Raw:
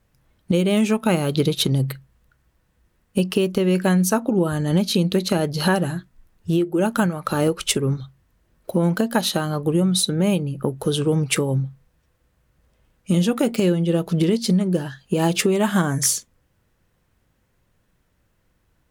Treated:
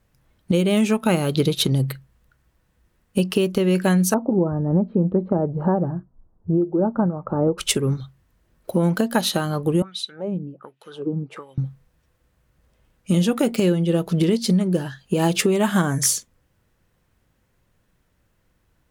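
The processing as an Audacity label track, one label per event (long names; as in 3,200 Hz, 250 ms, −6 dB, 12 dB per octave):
4.140000	7.580000	low-pass filter 1,000 Hz 24 dB per octave
9.820000	11.580000	LFO wah 1.3 Hz 210–3,000 Hz, Q 2.6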